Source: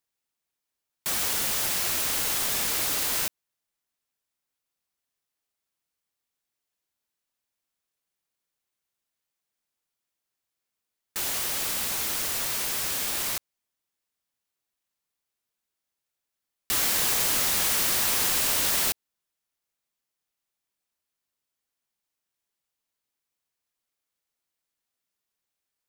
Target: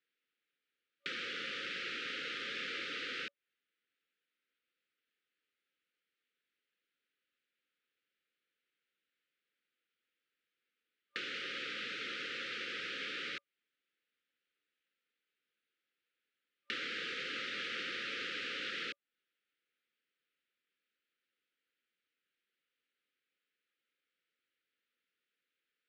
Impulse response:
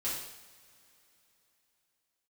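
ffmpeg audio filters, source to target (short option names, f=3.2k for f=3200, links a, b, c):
-filter_complex "[0:a]acrossover=split=670|2000[a][b][c];[a]acompressor=threshold=-50dB:ratio=4[d];[b]acompressor=threshold=-50dB:ratio=4[e];[c]acompressor=threshold=-36dB:ratio=4[f];[d][e][f]amix=inputs=3:normalize=0,highpass=330,equalizer=f=380:t=q:w=4:g=-3,equalizer=f=620:t=q:w=4:g=-7,equalizer=f=1.1k:t=q:w=4:g=-7,lowpass=f=3.3k:w=0.5412,lowpass=f=3.3k:w=1.3066,afftfilt=real='re*(1-between(b*sr/4096,560,1200))':imag='im*(1-between(b*sr/4096,560,1200))':win_size=4096:overlap=0.75,volume=5.5dB"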